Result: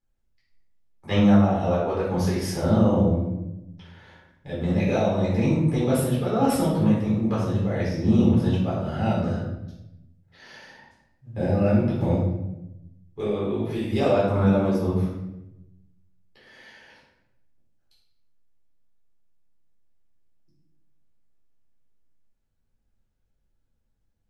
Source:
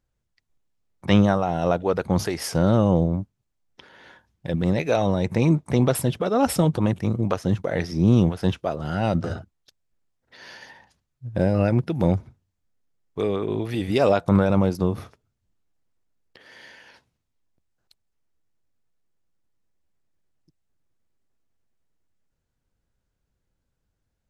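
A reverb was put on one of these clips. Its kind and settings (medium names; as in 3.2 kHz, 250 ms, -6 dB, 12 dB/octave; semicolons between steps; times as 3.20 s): simulated room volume 300 m³, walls mixed, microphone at 4 m; trim -13 dB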